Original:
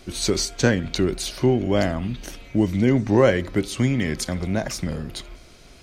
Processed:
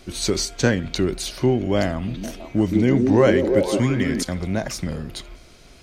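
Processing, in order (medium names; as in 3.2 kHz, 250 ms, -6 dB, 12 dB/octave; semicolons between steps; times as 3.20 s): 1.91–4.23 s: repeats whose band climbs or falls 163 ms, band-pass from 290 Hz, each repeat 0.7 oct, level 0 dB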